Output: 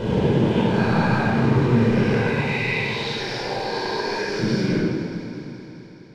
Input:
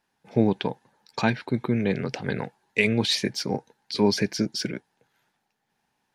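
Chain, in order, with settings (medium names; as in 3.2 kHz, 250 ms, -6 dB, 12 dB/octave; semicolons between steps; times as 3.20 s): reverse spectral sustain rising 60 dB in 2.56 s; recorder AGC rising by 37 dB/s; 2.30–4.39 s: high-pass 640 Hz 12 dB/octave; compression 6:1, threshold -19 dBFS, peak gain reduction 7 dB; bit crusher 5-bit; tape spacing loss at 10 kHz 24 dB; echo whose repeats swap between lows and highs 105 ms, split 2.1 kHz, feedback 85%, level -11.5 dB; reverberation RT60 1.6 s, pre-delay 18 ms, DRR -5 dB; trim -5.5 dB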